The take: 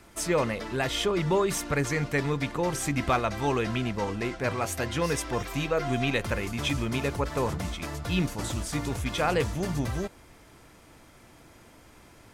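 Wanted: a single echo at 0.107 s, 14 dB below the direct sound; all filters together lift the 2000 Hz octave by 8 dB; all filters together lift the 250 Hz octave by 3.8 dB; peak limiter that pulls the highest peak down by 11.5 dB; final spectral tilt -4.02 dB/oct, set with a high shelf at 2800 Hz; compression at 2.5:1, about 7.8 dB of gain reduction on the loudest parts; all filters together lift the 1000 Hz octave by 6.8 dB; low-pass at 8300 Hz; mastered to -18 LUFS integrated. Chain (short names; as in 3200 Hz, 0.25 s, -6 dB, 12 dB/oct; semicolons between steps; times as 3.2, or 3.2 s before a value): LPF 8300 Hz; bell 250 Hz +4.5 dB; bell 1000 Hz +6 dB; bell 2000 Hz +5.5 dB; high shelf 2800 Hz +6.5 dB; compressor 2.5:1, threshold -27 dBFS; limiter -25 dBFS; echo 0.107 s -14 dB; gain +16 dB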